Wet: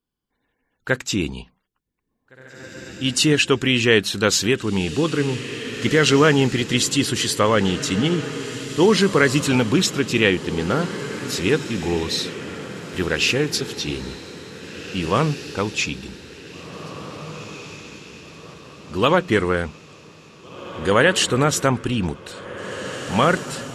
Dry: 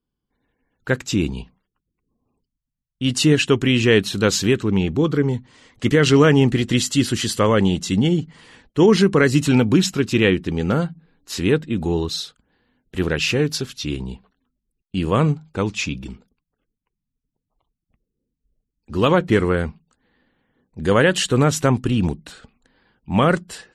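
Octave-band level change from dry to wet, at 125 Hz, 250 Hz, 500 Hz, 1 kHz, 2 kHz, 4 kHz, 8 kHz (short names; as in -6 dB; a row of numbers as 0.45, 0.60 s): -4.0, -3.0, -1.0, +1.5, +2.5, +2.5, +3.0 dB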